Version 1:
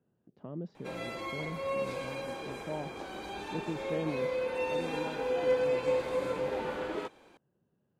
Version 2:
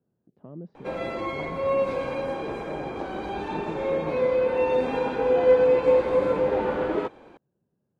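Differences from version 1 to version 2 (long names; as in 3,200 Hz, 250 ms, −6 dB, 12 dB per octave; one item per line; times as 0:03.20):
background +11.0 dB
master: add low-pass filter 1,100 Hz 6 dB per octave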